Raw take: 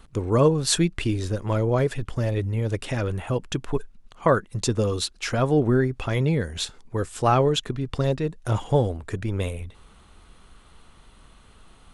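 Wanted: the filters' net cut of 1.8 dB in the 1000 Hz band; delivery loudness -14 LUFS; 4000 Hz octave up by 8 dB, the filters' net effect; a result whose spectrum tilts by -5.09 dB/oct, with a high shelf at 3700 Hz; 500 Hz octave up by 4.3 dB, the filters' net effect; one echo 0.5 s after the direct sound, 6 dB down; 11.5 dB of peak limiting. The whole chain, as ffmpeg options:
-af "equalizer=f=500:t=o:g=6,equalizer=f=1k:t=o:g=-5.5,highshelf=f=3.7k:g=6.5,equalizer=f=4k:t=o:g=5.5,alimiter=limit=-12.5dB:level=0:latency=1,aecho=1:1:500:0.501,volume=9dB"

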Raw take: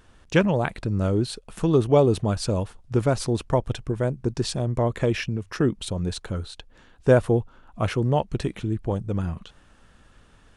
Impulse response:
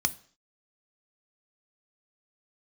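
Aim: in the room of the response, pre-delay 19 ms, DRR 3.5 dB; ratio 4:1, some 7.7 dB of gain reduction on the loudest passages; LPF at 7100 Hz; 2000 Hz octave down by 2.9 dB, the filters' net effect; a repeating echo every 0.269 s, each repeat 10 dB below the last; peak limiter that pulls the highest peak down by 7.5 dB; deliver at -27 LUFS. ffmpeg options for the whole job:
-filter_complex "[0:a]lowpass=7.1k,equalizer=f=2k:t=o:g=-4,acompressor=threshold=-21dB:ratio=4,alimiter=limit=-19.5dB:level=0:latency=1,aecho=1:1:269|538|807|1076:0.316|0.101|0.0324|0.0104,asplit=2[a][b];[1:a]atrim=start_sample=2205,adelay=19[c];[b][c]afir=irnorm=-1:irlink=0,volume=-10.5dB[d];[a][d]amix=inputs=2:normalize=0,volume=1.5dB"

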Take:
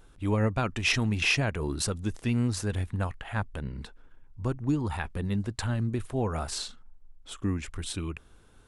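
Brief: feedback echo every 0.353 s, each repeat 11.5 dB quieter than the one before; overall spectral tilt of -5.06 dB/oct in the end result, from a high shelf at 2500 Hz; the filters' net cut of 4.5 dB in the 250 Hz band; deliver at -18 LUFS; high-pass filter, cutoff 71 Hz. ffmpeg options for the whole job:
-af "highpass=71,equalizer=f=250:t=o:g=-5.5,highshelf=f=2.5k:g=-4,aecho=1:1:353|706|1059:0.266|0.0718|0.0194,volume=14.5dB"

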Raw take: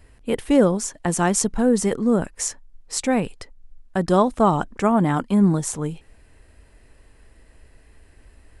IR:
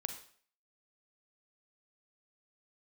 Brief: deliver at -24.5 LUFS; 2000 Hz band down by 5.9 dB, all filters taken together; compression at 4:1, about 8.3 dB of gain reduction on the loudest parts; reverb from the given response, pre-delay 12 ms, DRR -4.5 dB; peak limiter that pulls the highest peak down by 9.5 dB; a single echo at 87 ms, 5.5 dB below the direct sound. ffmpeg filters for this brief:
-filter_complex "[0:a]equalizer=f=2k:t=o:g=-8,acompressor=threshold=-22dB:ratio=4,alimiter=limit=-18dB:level=0:latency=1,aecho=1:1:87:0.531,asplit=2[a][b];[1:a]atrim=start_sample=2205,adelay=12[c];[b][c]afir=irnorm=-1:irlink=0,volume=5dB[d];[a][d]amix=inputs=2:normalize=0,volume=-2dB"

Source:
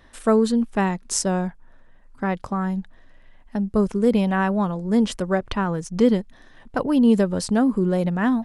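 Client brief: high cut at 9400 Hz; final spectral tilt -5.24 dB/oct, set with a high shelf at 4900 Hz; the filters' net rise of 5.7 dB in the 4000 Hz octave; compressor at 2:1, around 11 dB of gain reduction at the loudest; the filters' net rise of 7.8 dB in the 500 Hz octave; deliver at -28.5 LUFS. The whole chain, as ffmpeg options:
-af "lowpass=9.4k,equalizer=f=500:t=o:g=9,equalizer=f=4k:t=o:g=6,highshelf=f=4.9k:g=3.5,acompressor=threshold=-27dB:ratio=2,volume=-2.5dB"

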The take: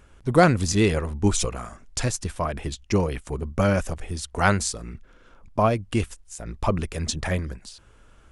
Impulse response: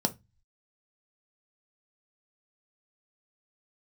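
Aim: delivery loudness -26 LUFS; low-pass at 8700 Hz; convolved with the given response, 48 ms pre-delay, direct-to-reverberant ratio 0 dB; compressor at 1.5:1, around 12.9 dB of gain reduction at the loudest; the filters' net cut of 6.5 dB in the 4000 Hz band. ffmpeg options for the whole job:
-filter_complex "[0:a]lowpass=8.7k,equalizer=f=4k:t=o:g=-8.5,acompressor=threshold=-48dB:ratio=1.5,asplit=2[a][b];[1:a]atrim=start_sample=2205,adelay=48[c];[b][c]afir=irnorm=-1:irlink=0,volume=-7dB[d];[a][d]amix=inputs=2:normalize=0,volume=3dB"

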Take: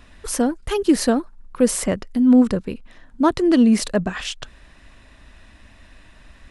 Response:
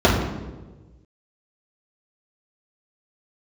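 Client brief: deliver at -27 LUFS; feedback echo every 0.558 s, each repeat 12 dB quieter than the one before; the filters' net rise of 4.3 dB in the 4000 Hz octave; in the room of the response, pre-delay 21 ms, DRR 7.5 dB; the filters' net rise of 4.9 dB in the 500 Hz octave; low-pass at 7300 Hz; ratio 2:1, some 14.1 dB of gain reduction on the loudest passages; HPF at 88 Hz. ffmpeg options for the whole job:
-filter_complex "[0:a]highpass=88,lowpass=7.3k,equalizer=f=500:t=o:g=6,equalizer=f=4k:t=o:g=6,acompressor=threshold=-34dB:ratio=2,aecho=1:1:558|1116|1674:0.251|0.0628|0.0157,asplit=2[a][b];[1:a]atrim=start_sample=2205,adelay=21[c];[b][c]afir=irnorm=-1:irlink=0,volume=-31.5dB[d];[a][d]amix=inputs=2:normalize=0"

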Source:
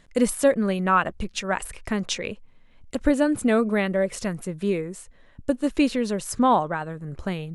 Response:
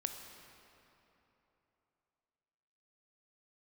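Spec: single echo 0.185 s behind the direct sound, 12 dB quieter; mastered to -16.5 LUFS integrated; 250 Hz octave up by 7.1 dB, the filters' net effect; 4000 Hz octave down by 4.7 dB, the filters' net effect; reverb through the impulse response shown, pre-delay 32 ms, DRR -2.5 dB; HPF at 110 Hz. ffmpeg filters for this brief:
-filter_complex "[0:a]highpass=110,equalizer=f=250:t=o:g=8.5,equalizer=f=4k:t=o:g=-6.5,aecho=1:1:185:0.251,asplit=2[a][b];[1:a]atrim=start_sample=2205,adelay=32[c];[b][c]afir=irnorm=-1:irlink=0,volume=2.5dB[d];[a][d]amix=inputs=2:normalize=0,volume=-1dB"

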